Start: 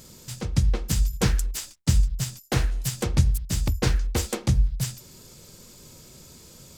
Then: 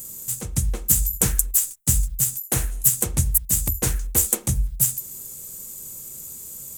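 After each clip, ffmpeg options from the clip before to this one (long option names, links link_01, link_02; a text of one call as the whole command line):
ffmpeg -i in.wav -af "aexciter=amount=11.2:drive=3.9:freq=7000,volume=-2.5dB" out.wav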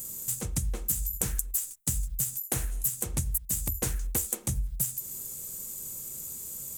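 ffmpeg -i in.wav -af "acompressor=threshold=-24dB:ratio=6,volume=-2dB" out.wav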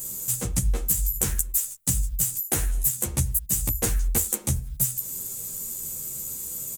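ffmpeg -i in.wav -filter_complex "[0:a]asplit=2[link_01][link_02];[link_02]adelay=11.6,afreqshift=-0.65[link_03];[link_01][link_03]amix=inputs=2:normalize=1,volume=8.5dB" out.wav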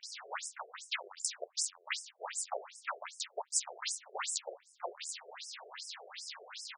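ffmpeg -i in.wav -filter_complex "[0:a]acrossover=split=250|2000[link_01][link_02][link_03];[link_03]adelay=30[link_04];[link_01]adelay=380[link_05];[link_05][link_02][link_04]amix=inputs=3:normalize=0,aeval=exprs='abs(val(0))':channel_layout=same,afftfilt=real='re*between(b*sr/1024,500*pow(7200/500,0.5+0.5*sin(2*PI*2.6*pts/sr))/1.41,500*pow(7200/500,0.5+0.5*sin(2*PI*2.6*pts/sr))*1.41)':imag='im*between(b*sr/1024,500*pow(7200/500,0.5+0.5*sin(2*PI*2.6*pts/sr))/1.41,500*pow(7200/500,0.5+0.5*sin(2*PI*2.6*pts/sr))*1.41)':win_size=1024:overlap=0.75,volume=1dB" out.wav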